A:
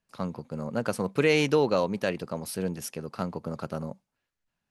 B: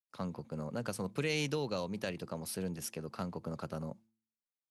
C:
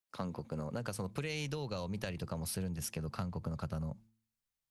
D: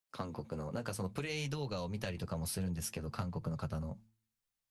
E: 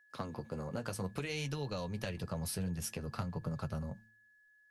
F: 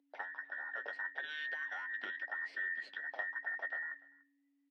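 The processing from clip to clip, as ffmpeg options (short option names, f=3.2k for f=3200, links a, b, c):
-filter_complex "[0:a]acrossover=split=160|3000[a][b][c];[b]acompressor=threshold=-34dB:ratio=2.5[d];[a][d][c]amix=inputs=3:normalize=0,agate=range=-33dB:threshold=-52dB:ratio=3:detection=peak,bandreject=f=111.3:t=h:w=4,bandreject=f=222.6:t=h:w=4,bandreject=f=333.9:t=h:w=4,volume=-4dB"
-af "asubboost=boost=9:cutoff=110,acompressor=threshold=-39dB:ratio=6,volume=4dB"
-af "flanger=delay=6.4:depth=5.8:regen=-39:speed=0.58:shape=triangular,volume=4dB"
-af "aeval=exprs='val(0)+0.000631*sin(2*PI*1700*n/s)':c=same"
-af "afftfilt=real='real(if(between(b,1,1012),(2*floor((b-1)/92)+1)*92-b,b),0)':imag='imag(if(between(b,1,1012),(2*floor((b-1)/92)+1)*92-b,b),0)*if(between(b,1,1012),-1,1)':win_size=2048:overlap=0.75,highpass=f=240:w=0.5412,highpass=f=240:w=1.3066,equalizer=f=270:t=q:w=4:g=-6,equalizer=f=550:t=q:w=4:g=4,equalizer=f=800:t=q:w=4:g=4,equalizer=f=1.2k:t=q:w=4:g=-7,equalizer=f=2k:t=q:w=4:g=4,lowpass=f=3.4k:w=0.5412,lowpass=f=3.4k:w=1.3066,aecho=1:1:292:0.0708,volume=-4dB"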